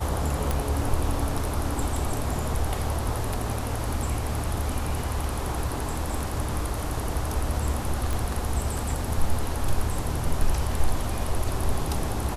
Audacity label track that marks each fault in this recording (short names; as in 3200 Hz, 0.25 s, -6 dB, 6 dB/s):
0.510000	0.510000	pop
8.130000	8.130000	pop